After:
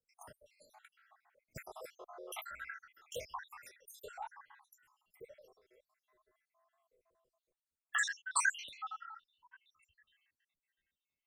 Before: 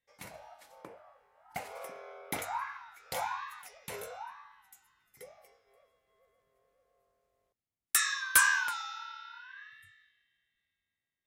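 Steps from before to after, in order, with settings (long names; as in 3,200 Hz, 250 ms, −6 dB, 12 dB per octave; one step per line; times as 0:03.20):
time-frequency cells dropped at random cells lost 76%
0:08.08–0:09.66: low-pass that shuts in the quiet parts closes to 870 Hz, open at −30.5 dBFS
harmonic and percussive parts rebalanced percussive −5 dB
frequency shifter −33 Hz
level +4 dB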